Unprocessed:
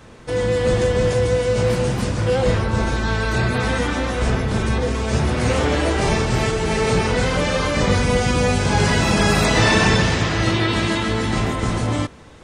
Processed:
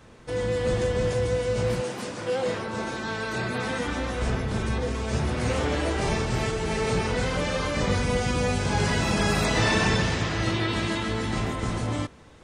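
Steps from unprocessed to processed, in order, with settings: 1.80–3.86 s: high-pass 300 Hz -> 130 Hz 12 dB/octave; trim -7 dB

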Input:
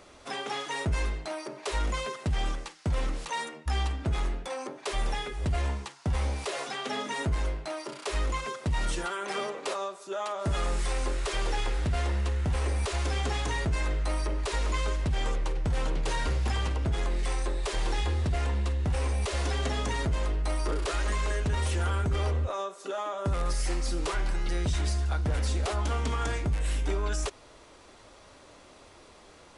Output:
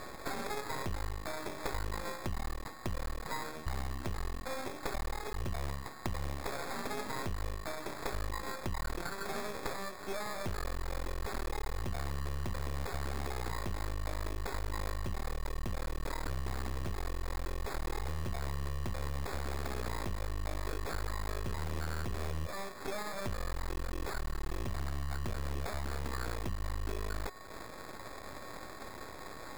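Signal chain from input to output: compression 5:1, threshold -43 dBFS, peak gain reduction 17 dB; whistle 1.1 kHz -56 dBFS; sample-and-hold 15×; half-wave rectifier; trim +10 dB

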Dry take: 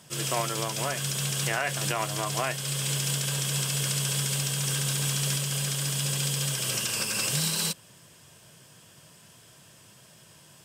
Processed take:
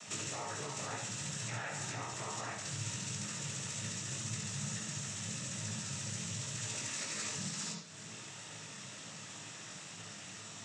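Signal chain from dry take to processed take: dynamic bell 3.3 kHz, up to -5 dB, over -43 dBFS, Q 1.1; compression 16:1, threshold -42 dBFS, peak gain reduction 19 dB; noise-vocoded speech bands 12; chorus 2.1 Hz, delay 18 ms, depth 3.8 ms; reverberation RT60 1.0 s, pre-delay 53 ms, DRR 3.5 dB; trim +10 dB

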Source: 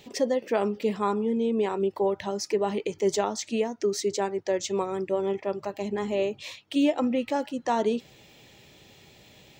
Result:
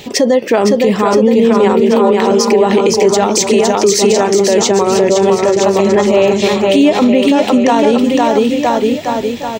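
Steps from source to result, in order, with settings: 1.80–2.30 s: high-pass 450 Hz; 3.23–3.93 s: treble shelf 6.7 kHz +11.5 dB; bouncing-ball echo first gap 510 ms, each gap 0.9×, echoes 5; loudness maximiser +20.5 dB; trim -1 dB

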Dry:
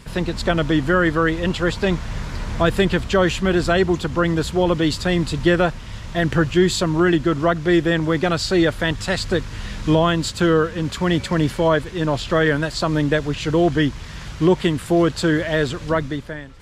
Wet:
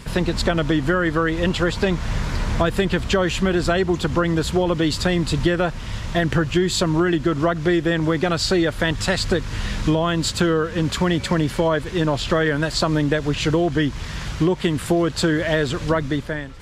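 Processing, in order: compression, threshold -20 dBFS, peak gain reduction 10 dB; trim +4.5 dB

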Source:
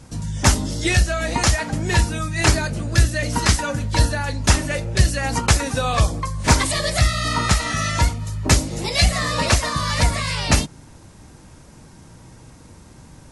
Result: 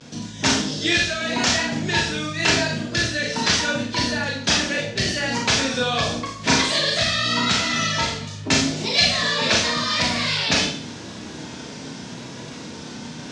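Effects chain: reverse; upward compressor, threshold -18 dBFS; reverse; vibrato 0.83 Hz 69 cents; cabinet simulation 230–6000 Hz, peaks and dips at 330 Hz -4 dB, 560 Hz -5 dB, 840 Hz -7 dB, 1.2 kHz -7 dB, 2 kHz -3 dB, 3.4 kHz +4 dB; Schroeder reverb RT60 0.5 s, combs from 26 ms, DRR -1 dB

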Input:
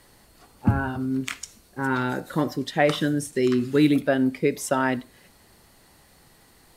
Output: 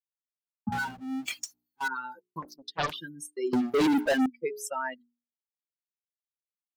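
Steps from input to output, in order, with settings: expander on every frequency bin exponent 3; gate -46 dBFS, range -51 dB; high-pass 220 Hz 12 dB/octave; hum notches 60/120/180/240/300/360/420 Hz; 3.53–4.26 s: waveshaping leveller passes 5; in parallel at +1.5 dB: compression, threshold -28 dBFS, peak gain reduction 11 dB; 0.72–1.88 s: on the sum: power-law waveshaper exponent 0.5; 2.42–2.94 s: loudspeaker Doppler distortion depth 0.86 ms; trim -8.5 dB

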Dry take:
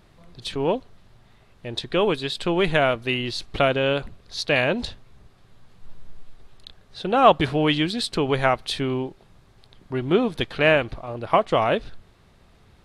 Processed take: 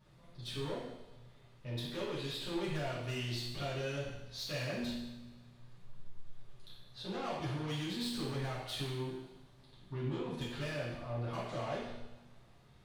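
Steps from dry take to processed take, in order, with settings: compression 6:1, threshold -21 dBFS, peak gain reduction 12 dB; saturation -27 dBFS, distortion -8 dB; feedback comb 120 Hz, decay 1.2 s, harmonics all, mix 70%; two-slope reverb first 0.82 s, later 2.8 s, from -24 dB, DRR -9 dB; trim -8 dB

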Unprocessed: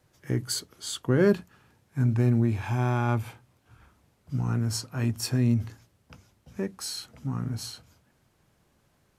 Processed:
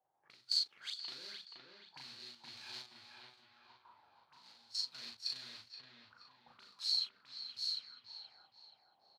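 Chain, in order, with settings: block-companded coder 3-bit; treble shelf 2.7 kHz -8 dB; hum notches 60/120 Hz; peak limiter -21.5 dBFS, peak gain reduction 11.5 dB; compression 3:1, threshold -30 dBFS, peak gain reduction 4.5 dB; auto-wah 730–4300 Hz, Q 8.5, up, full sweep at -37 dBFS; trance gate "....xxx.xxx" 117 bpm -12 dB; doubling 38 ms -2 dB; on a send: feedback echo behind a low-pass 476 ms, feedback 34%, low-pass 2.6 kHz, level -3.5 dB; on the sum: trim +9.5 dB

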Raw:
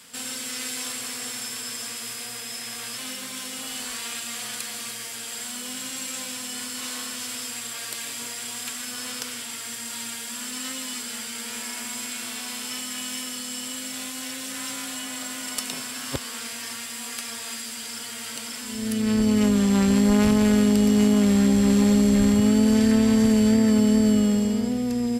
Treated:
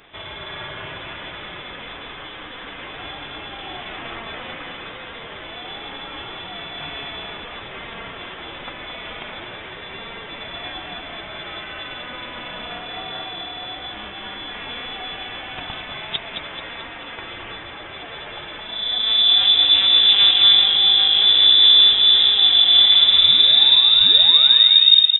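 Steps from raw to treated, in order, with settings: tape stop on the ending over 2.46 s; feedback delay 218 ms, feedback 49%, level -7 dB; frequency inversion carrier 3.7 kHz; trim +3.5 dB

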